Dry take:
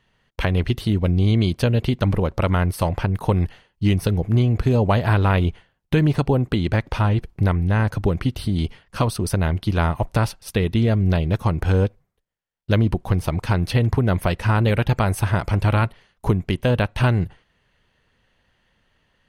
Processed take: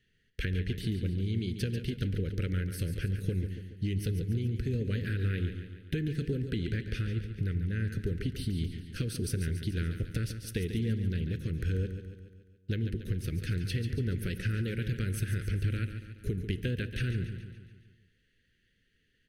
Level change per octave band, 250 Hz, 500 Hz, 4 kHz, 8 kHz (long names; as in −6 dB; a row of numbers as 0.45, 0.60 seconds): −12.5, −16.0, −11.0, −8.5 decibels